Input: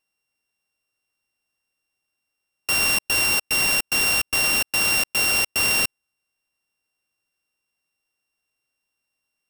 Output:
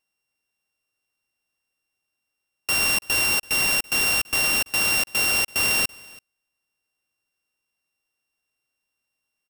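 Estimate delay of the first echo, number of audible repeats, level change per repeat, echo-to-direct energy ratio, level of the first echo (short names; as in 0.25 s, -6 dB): 0.333 s, 1, no steady repeat, -23.5 dB, -23.5 dB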